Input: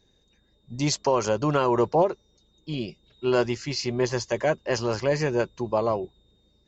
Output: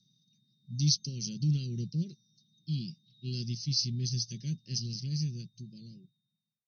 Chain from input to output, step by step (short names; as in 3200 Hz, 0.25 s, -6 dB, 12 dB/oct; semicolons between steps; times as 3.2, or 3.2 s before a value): ending faded out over 2.11 s; FFT band-pass 110–6300 Hz; Chebyshev band-stop 180–4400 Hz, order 3; gain +2 dB